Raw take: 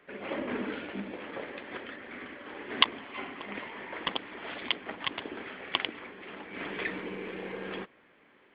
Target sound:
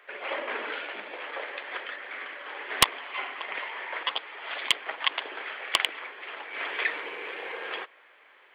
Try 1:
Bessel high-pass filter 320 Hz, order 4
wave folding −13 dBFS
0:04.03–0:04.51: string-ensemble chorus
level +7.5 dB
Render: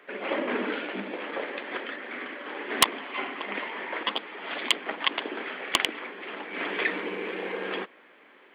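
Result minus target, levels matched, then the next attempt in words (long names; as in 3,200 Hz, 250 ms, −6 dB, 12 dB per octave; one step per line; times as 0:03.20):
250 Hz band +12.5 dB
Bessel high-pass filter 730 Hz, order 4
wave folding −13 dBFS
0:04.03–0:04.51: string-ensemble chorus
level +7.5 dB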